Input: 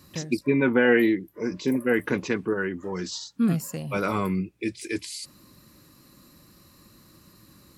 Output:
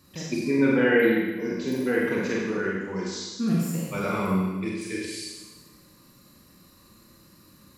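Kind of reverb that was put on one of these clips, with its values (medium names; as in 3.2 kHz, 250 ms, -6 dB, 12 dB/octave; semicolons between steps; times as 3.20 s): Schroeder reverb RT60 1.2 s, combs from 32 ms, DRR -4 dB; trim -5.5 dB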